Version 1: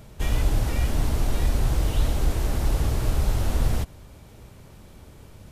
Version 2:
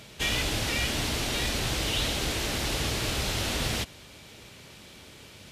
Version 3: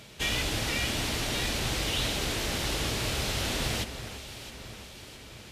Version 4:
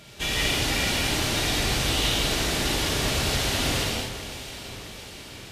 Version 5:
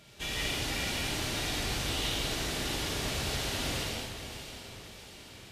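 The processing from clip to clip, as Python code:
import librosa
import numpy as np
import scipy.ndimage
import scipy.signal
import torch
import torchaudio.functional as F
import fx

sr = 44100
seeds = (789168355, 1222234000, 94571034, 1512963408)

y1 = fx.weighting(x, sr, curve='D')
y2 = fx.echo_alternate(y1, sr, ms=332, hz=2400.0, feedback_pct=74, wet_db=-10)
y2 = F.gain(torch.from_numpy(y2), -1.5).numpy()
y3 = fx.rev_gated(y2, sr, seeds[0], gate_ms=280, shape='flat', drr_db=-4.0)
y4 = y3 + 10.0 ** (-13.0 / 20.0) * np.pad(y3, (int(570 * sr / 1000.0), 0))[:len(y3)]
y4 = F.gain(torch.from_numpy(y4), -8.5).numpy()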